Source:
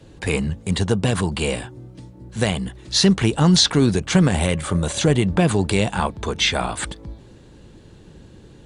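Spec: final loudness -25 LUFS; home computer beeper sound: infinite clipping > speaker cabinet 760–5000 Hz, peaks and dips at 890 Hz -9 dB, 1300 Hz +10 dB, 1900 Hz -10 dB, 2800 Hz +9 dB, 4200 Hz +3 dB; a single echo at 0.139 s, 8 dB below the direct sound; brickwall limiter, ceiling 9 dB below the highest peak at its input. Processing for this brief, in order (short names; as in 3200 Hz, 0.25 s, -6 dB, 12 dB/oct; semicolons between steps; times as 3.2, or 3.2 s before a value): limiter -11 dBFS; echo 0.139 s -8 dB; infinite clipping; speaker cabinet 760–5000 Hz, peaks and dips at 890 Hz -9 dB, 1300 Hz +10 dB, 1900 Hz -10 dB, 2800 Hz +9 dB, 4200 Hz +3 dB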